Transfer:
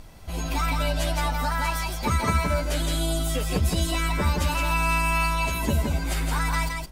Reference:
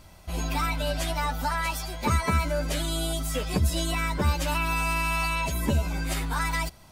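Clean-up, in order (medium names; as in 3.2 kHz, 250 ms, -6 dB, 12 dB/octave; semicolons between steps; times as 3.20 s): noise reduction 6 dB, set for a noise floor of -29 dBFS; inverse comb 167 ms -3.5 dB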